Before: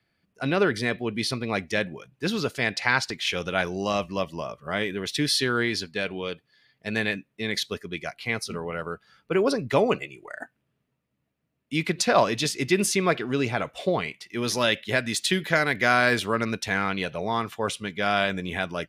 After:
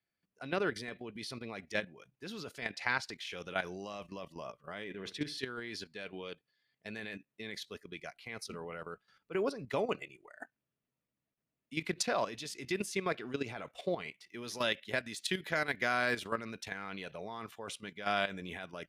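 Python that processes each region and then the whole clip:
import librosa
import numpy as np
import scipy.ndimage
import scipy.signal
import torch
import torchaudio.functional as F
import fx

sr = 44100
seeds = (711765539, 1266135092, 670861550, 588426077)

y = fx.chain(x, sr, fx.lowpass(hz=2900.0, slope=6),
    fx.room_flutter(wall_m=11.4, rt60_s=0.32), at=(4.84, 5.38))
y = fx.peak_eq(y, sr, hz=73.0, db=-5.0, octaves=2.7)
y = fx.level_steps(y, sr, step_db=12)
y = F.gain(torch.from_numpy(y), -7.0).numpy()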